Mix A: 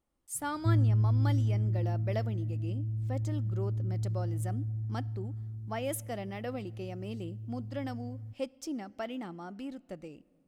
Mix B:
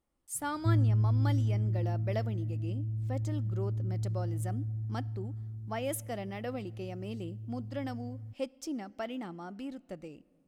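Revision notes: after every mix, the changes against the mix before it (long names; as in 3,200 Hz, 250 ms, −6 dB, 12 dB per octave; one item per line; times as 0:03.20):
background: send off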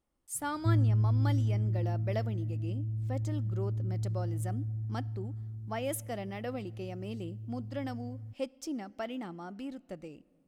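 nothing changed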